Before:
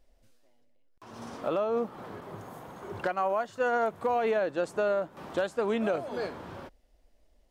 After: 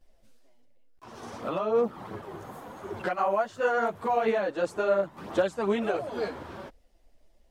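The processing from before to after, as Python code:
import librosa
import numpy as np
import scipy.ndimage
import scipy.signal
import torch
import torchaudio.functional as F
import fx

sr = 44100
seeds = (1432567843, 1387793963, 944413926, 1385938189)

y = fx.chorus_voices(x, sr, voices=2, hz=1.4, base_ms=12, depth_ms=3.0, mix_pct=65)
y = y * librosa.db_to_amplitude(4.5)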